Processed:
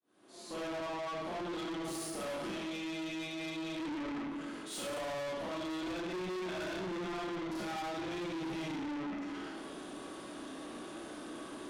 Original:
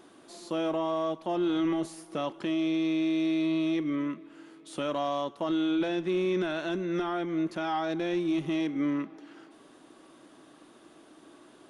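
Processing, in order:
fade in at the beginning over 1.39 s
brickwall limiter −30.5 dBFS, peak gain reduction 9.5 dB
four-comb reverb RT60 1.1 s, combs from 30 ms, DRR −9.5 dB
tube saturation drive 38 dB, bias 0.25
level +1 dB

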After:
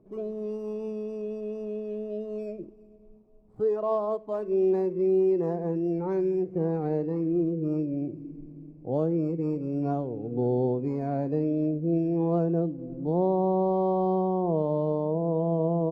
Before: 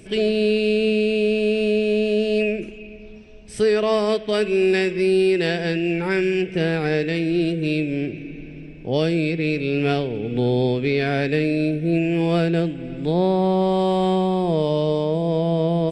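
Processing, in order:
running median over 15 samples
drawn EQ curve 1,100 Hz 0 dB, 1,600 Hz −19 dB, 3,300 Hz −22 dB
noise reduction from a noise print of the clip's start 9 dB
parametric band 65 Hz −13.5 dB 0.92 octaves
level −4.5 dB

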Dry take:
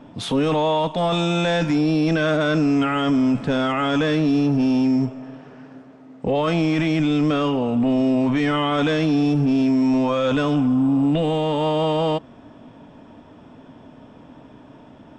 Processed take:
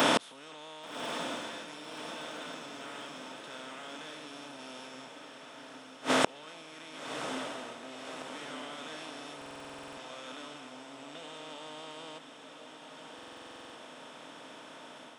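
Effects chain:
compressor on every frequency bin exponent 0.4
automatic gain control gain up to 12 dB
high-pass filter 82 Hz
low-shelf EQ 140 Hz −9 dB
gate with flip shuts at −12 dBFS, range −35 dB
RIAA equalisation recording
feedback delay with all-pass diffusion 1,135 ms, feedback 58%, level −8 dB
buffer that repeats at 0:09.37/0:13.14, samples 2,048, times 12
level +2 dB

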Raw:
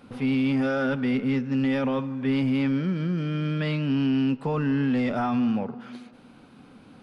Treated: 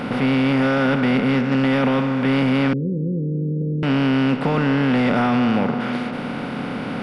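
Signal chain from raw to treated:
compressor on every frequency bin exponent 0.4
0:02.73–0:03.83: Chebyshev low-pass with heavy ripple 530 Hz, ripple 6 dB
level +3 dB

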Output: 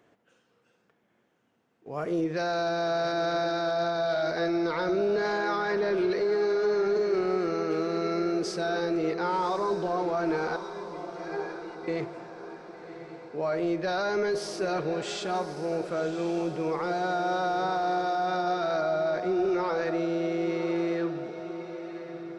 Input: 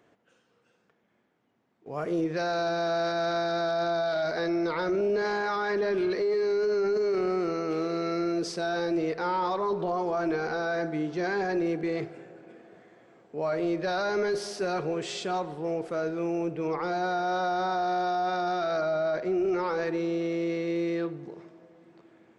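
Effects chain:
0:10.56–0:11.88: stiff-string resonator 120 Hz, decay 0.33 s, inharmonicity 0.03
feedback delay with all-pass diffusion 1,102 ms, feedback 49%, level −10.5 dB

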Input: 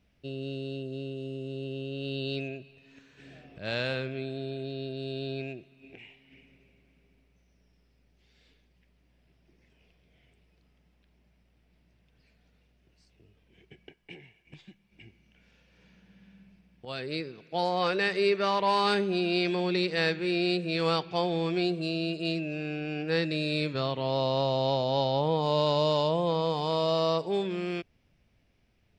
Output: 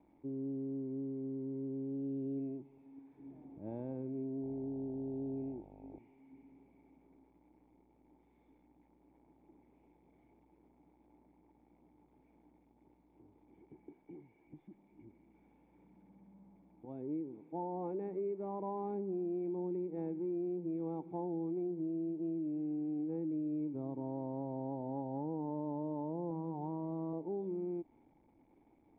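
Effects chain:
spike at every zero crossing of −27 dBFS
formant resonators in series u
0:04.41–0:05.98: hum with harmonics 50 Hz, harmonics 18, −63 dBFS −2 dB per octave
0:26.30–0:27.13: comb filter 5.3 ms, depth 55%
downward compressor 4 to 1, threshold −41 dBFS, peak gain reduction 7.5 dB
level +5 dB

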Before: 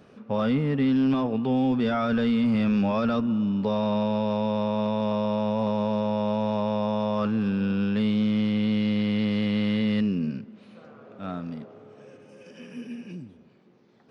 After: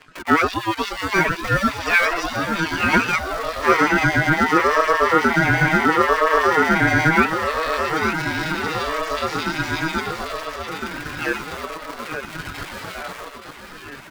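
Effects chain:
pitch shifter +7 semitones
parametric band 92 Hz −2 dB 2.3 octaves
comb filter 6.3 ms, depth 77%
leveller curve on the samples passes 1
in parallel at −12 dB: comparator with hysteresis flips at −38 dBFS
on the sum: auto-filter high-pass sine 8.3 Hz 770–1,700 Hz
reverb reduction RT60 0.64 s
repeating echo 875 ms, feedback 58%, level −7 dB
ring modulator whose carrier an LFO sweeps 500 Hz, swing 35%, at 0.72 Hz
level +4.5 dB

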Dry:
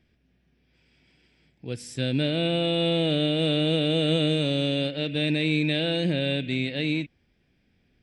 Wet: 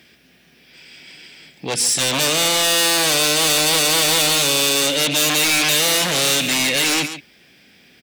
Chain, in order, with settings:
in parallel at −10 dB: sine wavefolder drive 17 dB, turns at −12.5 dBFS
on the sum: high-pass filter 77 Hz
spectral tilt +3 dB per octave
on a send: single-tap delay 140 ms −13.5 dB
on the sum: soft clipping −17.5 dBFS, distortion −11 dB
parametric band 100 Hz −14 dB 0.32 octaves
level +6 dB

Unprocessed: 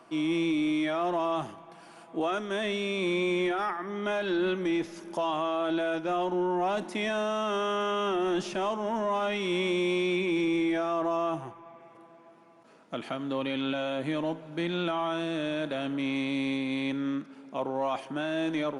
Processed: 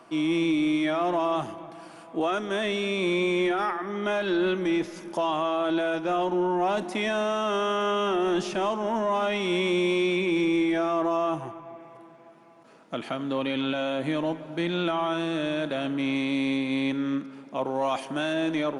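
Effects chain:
0:17.65–0:18.32: high-shelf EQ 4,900 Hz → 3,400 Hz +8.5 dB
feedback echo with a low-pass in the loop 254 ms, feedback 53%, low-pass 2,000 Hz, level −17 dB
level +3 dB

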